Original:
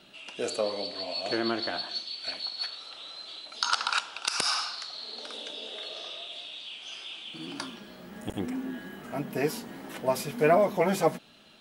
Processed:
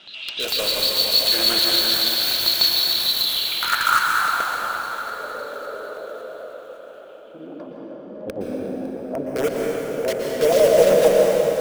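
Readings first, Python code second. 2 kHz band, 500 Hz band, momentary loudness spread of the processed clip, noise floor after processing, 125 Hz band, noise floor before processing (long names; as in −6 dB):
+10.5 dB, +10.5 dB, 19 LU, −40 dBFS, +2.0 dB, −50 dBFS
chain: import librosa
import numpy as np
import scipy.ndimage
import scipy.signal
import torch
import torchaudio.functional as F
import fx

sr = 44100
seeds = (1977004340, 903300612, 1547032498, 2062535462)

p1 = fx.tilt_eq(x, sr, slope=2.5)
p2 = fx.hum_notches(p1, sr, base_hz=60, count=6)
p3 = fx.filter_sweep_lowpass(p2, sr, from_hz=4000.0, to_hz=540.0, start_s=3.24, end_s=4.5, q=5.6)
p4 = (np.mod(10.0 ** (20.5 / 20.0) * p3 + 1.0, 2.0) - 1.0) / 10.0 ** (20.5 / 20.0)
p5 = p3 + F.gain(torch.from_numpy(p4), -4.0).numpy()
p6 = fx.filter_lfo_notch(p5, sr, shape='square', hz=6.7, low_hz=810.0, high_hz=4200.0, q=1.3)
p7 = p6 + fx.echo_feedback(p6, sr, ms=556, feedback_pct=55, wet_db=-16.5, dry=0)
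y = fx.rev_plate(p7, sr, seeds[0], rt60_s=4.7, hf_ratio=0.7, predelay_ms=105, drr_db=-2.0)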